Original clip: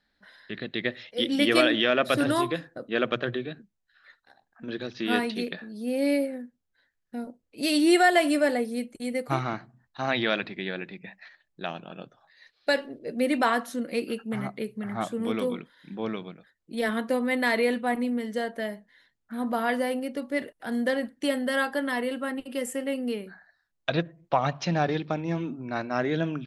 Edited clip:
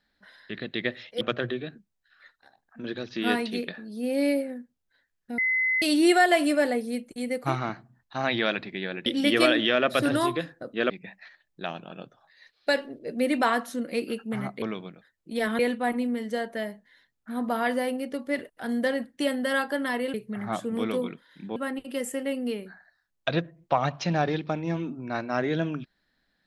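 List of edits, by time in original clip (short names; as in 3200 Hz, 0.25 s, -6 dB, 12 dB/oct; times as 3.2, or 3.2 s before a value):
1.21–3.05 move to 10.9
7.22–7.66 bleep 2040 Hz -21.5 dBFS
14.62–16.04 move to 22.17
17.01–17.62 cut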